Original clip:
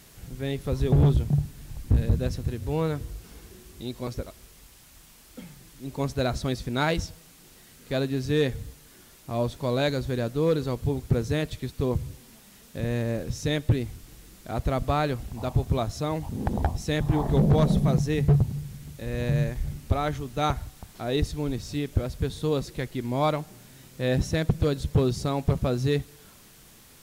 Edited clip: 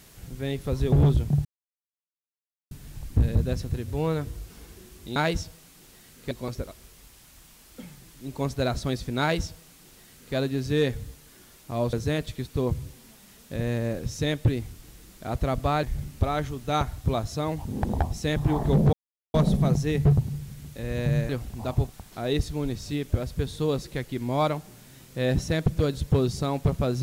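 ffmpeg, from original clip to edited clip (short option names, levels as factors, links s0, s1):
-filter_complex "[0:a]asplit=10[s0][s1][s2][s3][s4][s5][s6][s7][s8][s9];[s0]atrim=end=1.45,asetpts=PTS-STARTPTS,afade=t=out:st=1.446:d=0.004:c=hsin,apad=pad_dur=1.26[s10];[s1]atrim=start=1.45:end=3.902,asetpts=PTS-STARTPTS,afade=t=in:d=0.004:c=hsin[s11];[s2]atrim=start=6.788:end=7.942[s12];[s3]atrim=start=3.898:end=9.522[s13];[s4]atrim=start=11.168:end=15.072[s14];[s5]atrim=start=19.518:end=20.732[s15];[s6]atrim=start=15.678:end=17.57,asetpts=PTS-STARTPTS,afade=t=out:st=1.888:d=0.004:c=hsin,apad=pad_dur=0.41[s16];[s7]atrim=start=17.57:end=19.522,asetpts=PTS-STARTPTS,afade=t=in:d=0.004:c=hsin[s17];[s8]atrim=start=15.068:end=15.682[s18];[s9]atrim=start=20.728[s19];[s10][s11]concat=n=2:v=0:a=1[s20];[s20][s12]acrossfade=d=0.004:c1=hsin:c2=hsin[s21];[s21][s13]acrossfade=d=0.004:c1=hsin:c2=hsin[s22];[s22][s14]acrossfade=d=0.004:c1=hsin:c2=hsin[s23];[s23][s15]acrossfade=d=0.004:c1=hsin:c2=hsin[s24];[s16][s17]concat=n=2:v=0:a=1[s25];[s24][s25]acrossfade=d=0.004:c1=hsin:c2=hsin[s26];[s26][s18]acrossfade=d=0.004:c1=hsin:c2=hsin[s27];[s27][s19]acrossfade=d=0.004:c1=hsin:c2=hsin"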